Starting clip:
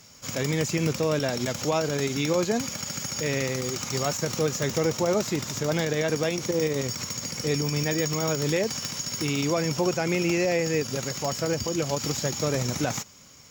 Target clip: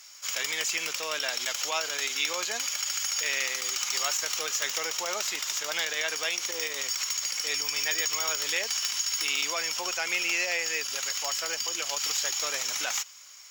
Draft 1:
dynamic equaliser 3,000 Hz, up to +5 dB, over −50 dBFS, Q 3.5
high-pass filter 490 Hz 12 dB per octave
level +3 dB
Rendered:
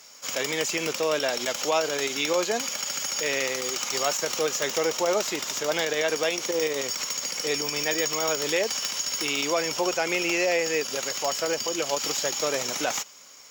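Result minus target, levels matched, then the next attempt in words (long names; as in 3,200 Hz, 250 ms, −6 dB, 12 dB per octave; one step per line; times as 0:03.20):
500 Hz band +11.5 dB
dynamic equaliser 3,000 Hz, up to +5 dB, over −50 dBFS, Q 3.5
high-pass filter 1,300 Hz 12 dB per octave
level +3 dB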